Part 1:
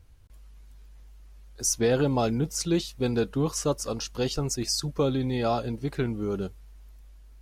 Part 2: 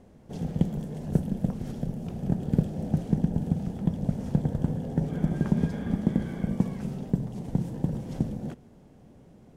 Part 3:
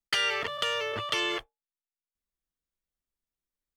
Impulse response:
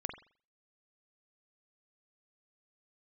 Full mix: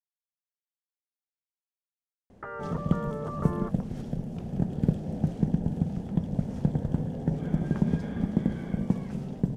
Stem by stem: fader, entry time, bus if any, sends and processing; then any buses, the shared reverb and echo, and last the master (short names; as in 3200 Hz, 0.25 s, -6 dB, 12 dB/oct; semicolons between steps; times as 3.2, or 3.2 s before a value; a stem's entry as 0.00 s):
off
-1.0 dB, 2.30 s, no send, dry
-1.5 dB, 2.30 s, no send, steep low-pass 1300 Hz 36 dB/oct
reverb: off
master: high shelf 10000 Hz -10 dB